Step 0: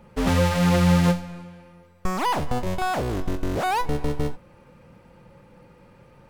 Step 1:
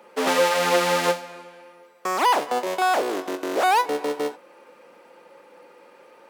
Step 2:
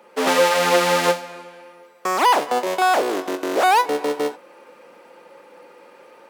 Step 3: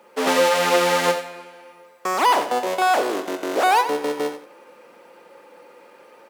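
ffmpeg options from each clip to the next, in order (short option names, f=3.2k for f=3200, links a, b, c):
-af "highpass=f=340:w=0.5412,highpass=f=340:w=1.3066,volume=5dB"
-af "dynaudnorm=f=110:g=3:m=3.5dB"
-af "acrusher=bits=10:mix=0:aa=0.000001,aecho=1:1:88|176|264:0.282|0.0676|0.0162,volume=-1.5dB"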